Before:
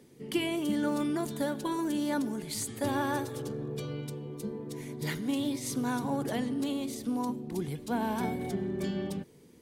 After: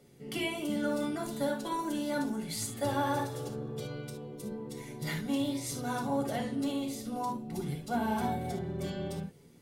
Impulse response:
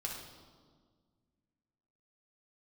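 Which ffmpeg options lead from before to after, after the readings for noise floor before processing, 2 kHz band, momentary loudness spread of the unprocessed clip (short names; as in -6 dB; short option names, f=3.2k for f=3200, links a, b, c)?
-56 dBFS, -0.5 dB, 8 LU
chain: -filter_complex "[1:a]atrim=start_sample=2205,atrim=end_sample=3528[a];[0:a][a]afir=irnorm=-1:irlink=0"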